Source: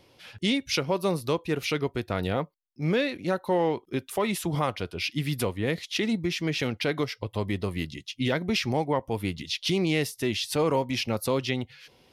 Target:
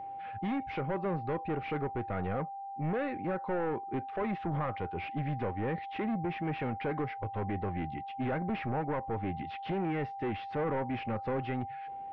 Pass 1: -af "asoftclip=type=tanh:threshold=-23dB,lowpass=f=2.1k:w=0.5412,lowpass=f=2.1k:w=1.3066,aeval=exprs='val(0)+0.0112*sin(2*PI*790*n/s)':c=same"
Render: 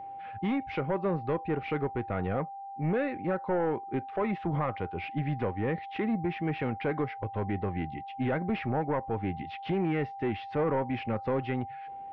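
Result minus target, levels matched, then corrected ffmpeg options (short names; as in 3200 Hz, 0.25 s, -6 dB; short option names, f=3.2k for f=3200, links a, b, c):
soft clip: distortion -5 dB
-af "asoftclip=type=tanh:threshold=-29.5dB,lowpass=f=2.1k:w=0.5412,lowpass=f=2.1k:w=1.3066,aeval=exprs='val(0)+0.0112*sin(2*PI*790*n/s)':c=same"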